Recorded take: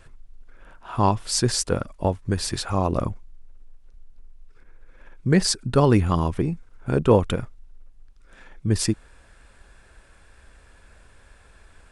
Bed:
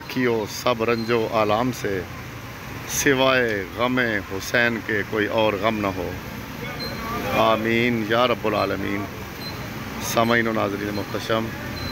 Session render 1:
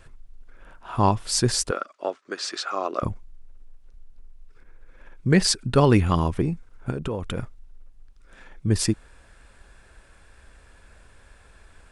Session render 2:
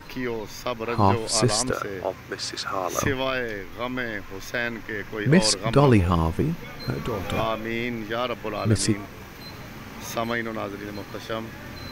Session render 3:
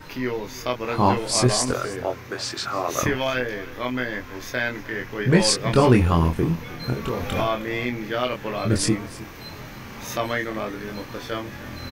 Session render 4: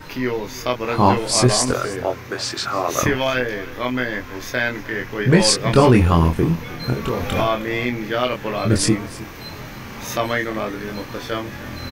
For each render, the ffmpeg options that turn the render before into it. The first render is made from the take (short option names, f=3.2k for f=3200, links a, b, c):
-filter_complex "[0:a]asettb=1/sr,asplit=3[a][b][c];[a]atrim=end=1.714[d];[b]atrim=start=1.71:end=3.03,asetpts=PTS-STARTPTS,afade=t=in:d=0.004:c=qsin,afade=t=out:st=1.316:d=0.004:c=qsin,highpass=f=370:w=0.5412,highpass=f=370:w=1.3066,equalizer=f=480:t=q:w=4:g=-5,equalizer=f=900:t=q:w=4:g=-8,equalizer=f=1.3k:t=q:w=4:g=8,lowpass=f=6.9k:w=0.5412,lowpass=f=6.9k:w=1.3066[e];[c]atrim=start=3.026[f];[d][e]acrossfade=d=0.004:c1=hsin:c2=qsin[g];[g][f]acrossfade=d=0.004:c1=qsin:c2=hsin,asettb=1/sr,asplit=3[h][i][j];[h]atrim=end=5.304[k];[i]atrim=start=5.3:end=6.22,asetpts=PTS-STARTPTS,afade=t=in:d=0.004:c=qsin,afade=t=out:st=0.916:d=0.004:c=qsin,equalizer=f=2.7k:w=1:g=4[l];[j]atrim=start=6.216[m];[k][l]acrossfade=d=0.004:c1=hsin:c2=qsin[n];[n][m]acrossfade=d=0.004:c1=qsin:c2=hsin,asplit=3[o][p][q];[o]afade=t=out:st=6.9:d=0.02[r];[p]acompressor=threshold=-24dB:ratio=10:attack=3.2:release=140:knee=1:detection=peak,afade=t=in:st=6.9:d=0.02,afade=t=out:st=7.35:d=0.02[s];[q]afade=t=in:st=7.35:d=0.02[t];[r][s][t]amix=inputs=3:normalize=0"
-filter_complex "[1:a]volume=-8dB[a];[0:a][a]amix=inputs=2:normalize=0"
-filter_complex "[0:a]asplit=2[a][b];[b]adelay=24,volume=-4dB[c];[a][c]amix=inputs=2:normalize=0,aecho=1:1:312:0.119"
-af "volume=4dB,alimiter=limit=-2dB:level=0:latency=1"